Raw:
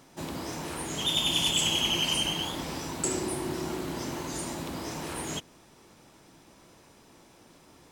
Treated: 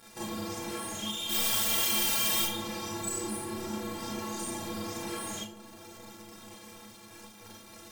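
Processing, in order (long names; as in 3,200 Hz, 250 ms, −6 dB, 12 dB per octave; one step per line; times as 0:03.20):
high-pass filter 40 Hz
high-shelf EQ 12,000 Hz +3.5 dB
leveller curve on the samples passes 5
downward compressor 12 to 1, threshold −33 dBFS, peak gain reduction 17 dB
0:01.28–0:02.42: background noise white −27 dBFS
stiff-string resonator 100 Hz, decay 0.25 s, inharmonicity 0.03
on a send: delay with a low-pass on its return 391 ms, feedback 75%, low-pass 1,200 Hz, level −15 dB
on the sum: four-comb reverb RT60 0.31 s, combs from 29 ms, DRR −5.5 dB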